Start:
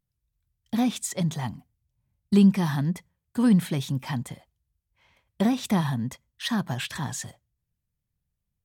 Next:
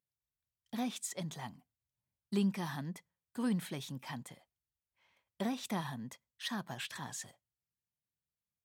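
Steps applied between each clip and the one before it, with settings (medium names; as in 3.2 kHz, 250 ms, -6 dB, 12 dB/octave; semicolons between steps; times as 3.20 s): high-pass 330 Hz 6 dB/octave; trim -9 dB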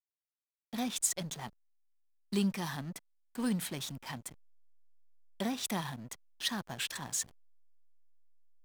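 treble shelf 3.5 kHz +12 dB; hysteresis with a dead band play -39.5 dBFS; trim +1 dB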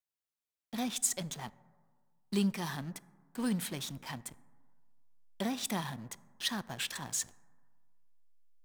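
plate-style reverb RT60 1.7 s, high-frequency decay 0.3×, DRR 19 dB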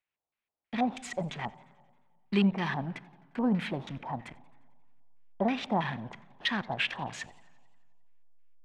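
LFO low-pass square 3.1 Hz 800–2400 Hz; modulated delay 88 ms, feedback 64%, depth 134 cents, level -23 dB; trim +4.5 dB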